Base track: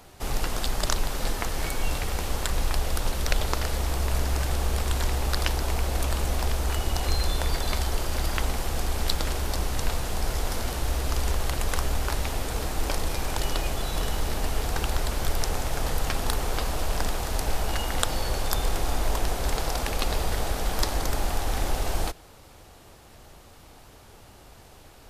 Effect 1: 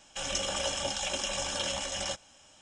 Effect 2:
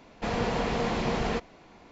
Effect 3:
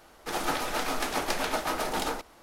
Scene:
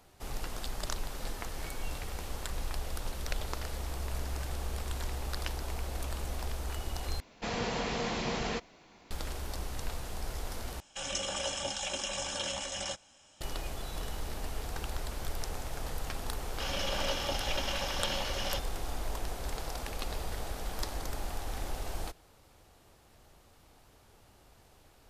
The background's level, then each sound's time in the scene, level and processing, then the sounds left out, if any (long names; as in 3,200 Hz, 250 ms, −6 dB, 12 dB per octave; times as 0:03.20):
base track −10.5 dB
0:07.20: overwrite with 2 −6.5 dB + high-shelf EQ 2,700 Hz +10 dB
0:10.80: overwrite with 1 −3 dB
0:16.44: mix in 1 −1 dB + variable-slope delta modulation 32 kbit/s
not used: 3